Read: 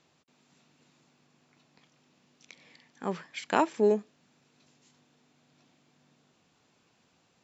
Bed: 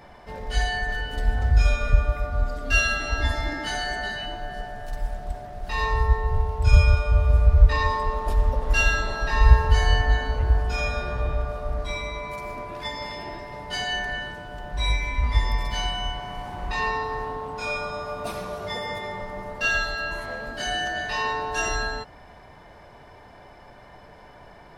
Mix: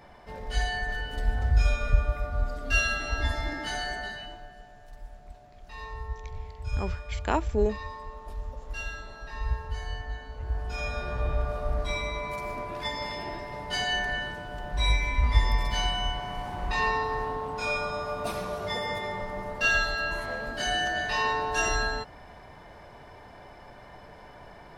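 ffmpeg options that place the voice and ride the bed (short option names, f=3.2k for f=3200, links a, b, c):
-filter_complex "[0:a]adelay=3750,volume=-2dB[a];[1:a]volume=11dB,afade=t=out:st=3.84:d=0.72:silence=0.266073,afade=t=in:st=10.33:d=1.26:silence=0.177828[b];[a][b]amix=inputs=2:normalize=0"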